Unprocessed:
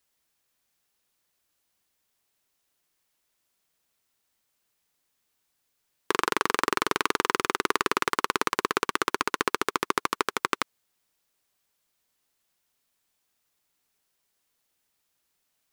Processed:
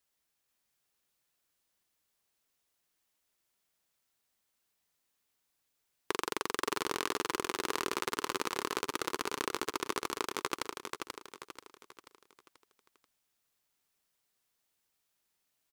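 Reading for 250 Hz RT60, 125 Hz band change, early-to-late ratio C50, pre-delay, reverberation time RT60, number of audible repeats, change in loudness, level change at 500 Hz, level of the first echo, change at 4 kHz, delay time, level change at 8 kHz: no reverb, -7.5 dB, no reverb, no reverb, no reverb, 5, -8.5 dB, -6.5 dB, -5.0 dB, -6.0 dB, 485 ms, -4.5 dB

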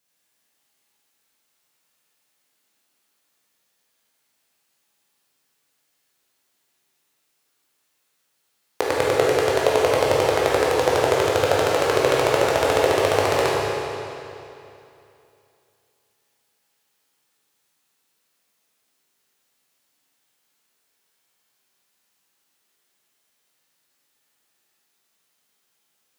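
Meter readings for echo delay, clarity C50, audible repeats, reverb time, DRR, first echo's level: no echo, -3.0 dB, no echo, 2.8 s, -5.5 dB, no echo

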